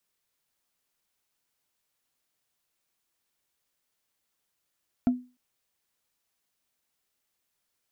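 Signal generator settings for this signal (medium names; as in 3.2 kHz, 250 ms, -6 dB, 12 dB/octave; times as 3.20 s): wood hit, length 0.30 s, lowest mode 249 Hz, decay 0.31 s, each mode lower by 11.5 dB, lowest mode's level -16 dB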